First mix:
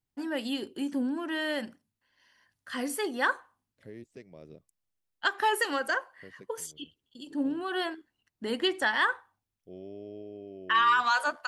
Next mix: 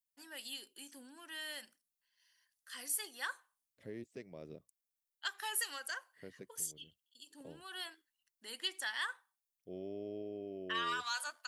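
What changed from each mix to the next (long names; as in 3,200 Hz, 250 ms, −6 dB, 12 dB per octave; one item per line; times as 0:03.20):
first voice: add first-order pre-emphasis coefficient 0.97
master: add low-shelf EQ 84 Hz −7 dB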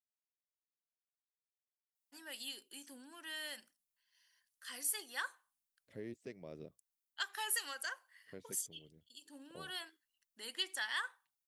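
first voice: entry +1.95 s
second voice: entry +2.10 s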